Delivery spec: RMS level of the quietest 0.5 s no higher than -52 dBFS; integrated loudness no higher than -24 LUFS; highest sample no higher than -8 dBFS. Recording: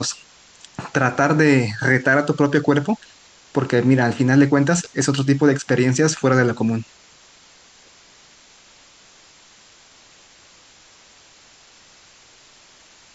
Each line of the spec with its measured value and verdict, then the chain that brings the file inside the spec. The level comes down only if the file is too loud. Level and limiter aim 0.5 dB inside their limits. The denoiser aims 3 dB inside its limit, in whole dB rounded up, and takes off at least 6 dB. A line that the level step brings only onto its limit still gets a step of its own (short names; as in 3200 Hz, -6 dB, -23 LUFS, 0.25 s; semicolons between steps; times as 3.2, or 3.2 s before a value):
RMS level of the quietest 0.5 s -50 dBFS: fail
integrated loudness -18.0 LUFS: fail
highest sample -3.5 dBFS: fail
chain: gain -6.5 dB